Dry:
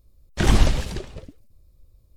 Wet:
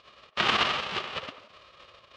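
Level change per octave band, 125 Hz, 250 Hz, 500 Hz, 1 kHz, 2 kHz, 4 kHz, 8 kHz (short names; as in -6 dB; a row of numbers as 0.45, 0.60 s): -22.0, -13.5, -5.0, +4.0, +4.0, +5.0, -12.0 dB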